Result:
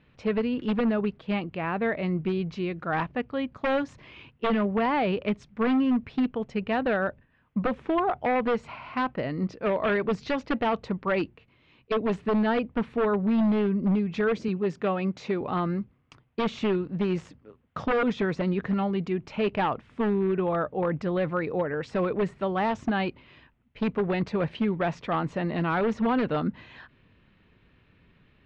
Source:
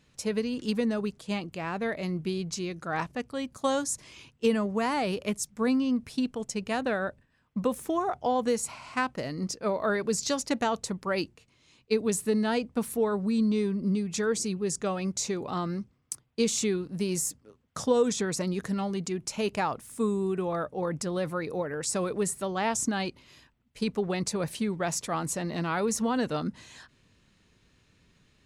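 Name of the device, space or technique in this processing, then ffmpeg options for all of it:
synthesiser wavefolder: -filter_complex "[0:a]aeval=exprs='0.075*(abs(mod(val(0)/0.075+3,4)-2)-1)':channel_layout=same,lowpass=frequency=3000:width=0.5412,lowpass=frequency=3000:width=1.3066,asettb=1/sr,asplit=3[link_01][link_02][link_03];[link_01]atrim=end=14.484[link_04];[link_02]atrim=start=14.48:end=15.41,asetpts=PTS-STARTPTS,afade=type=in:duration=0.004:curve=qsin,afade=type=out:start_time=0.926:duration=0.004:curve=qsin,highpass=130[link_05];[link_03]atrim=start=15.406[link_06];[link_04][link_05]acrossfade=duration=0.004:curve1=hsin:curve2=qsin[link_07];[link_07][link_06]acrossfade=duration=0.004:curve1=qsin:curve2=hsin,volume=4dB"

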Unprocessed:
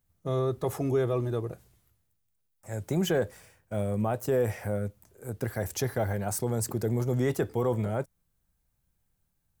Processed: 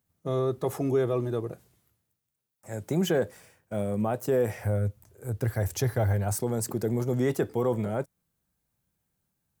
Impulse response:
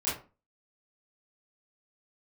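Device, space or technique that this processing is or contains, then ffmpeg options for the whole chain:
filter by subtraction: -filter_complex "[0:a]asplit=2[link_01][link_02];[link_02]lowpass=210,volume=-1[link_03];[link_01][link_03]amix=inputs=2:normalize=0,asettb=1/sr,asplit=3[link_04][link_05][link_06];[link_04]atrim=end=4.554[link_07];[link_05]atrim=start=4.55:end=6.36,asetpts=PTS-STARTPTS,afade=type=in:duration=0.004:curve=qsin,afade=type=out:start_time=1.806:duration=0.004:curve=qsin,lowshelf=frequency=140:width_type=q:width=1.5:gain=8.5[link_08];[link_06]atrim=start=6.356[link_09];[link_07][link_08]acrossfade=duration=0.004:curve1=hsin:curve2=qsin[link_10];[link_10][link_09]acrossfade=duration=0.004:curve1=qsin:curve2=hsin"

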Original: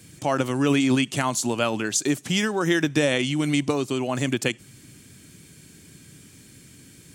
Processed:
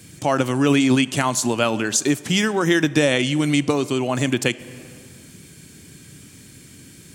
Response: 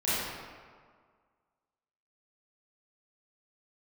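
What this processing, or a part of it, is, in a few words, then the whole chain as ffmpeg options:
ducked reverb: -filter_complex "[0:a]asplit=3[link_01][link_02][link_03];[1:a]atrim=start_sample=2205[link_04];[link_02][link_04]afir=irnorm=-1:irlink=0[link_05];[link_03]apad=whole_len=315040[link_06];[link_05][link_06]sidechaincompress=threshold=-29dB:ratio=5:attack=43:release=457,volume=-21dB[link_07];[link_01][link_07]amix=inputs=2:normalize=0,volume=3.5dB"

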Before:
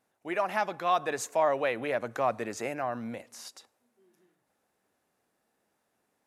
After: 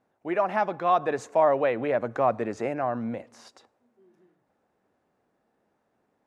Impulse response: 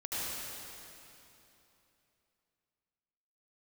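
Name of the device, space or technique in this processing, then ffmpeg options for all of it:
through cloth: -af "lowpass=8000,highshelf=frequency=2100:gain=-15,volume=6.5dB"

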